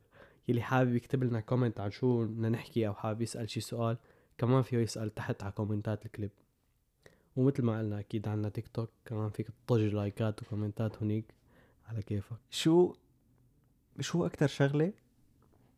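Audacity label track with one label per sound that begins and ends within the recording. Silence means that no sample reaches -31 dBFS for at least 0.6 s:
7.370000	11.200000	sound
11.970000	12.870000	sound
14.010000	14.890000	sound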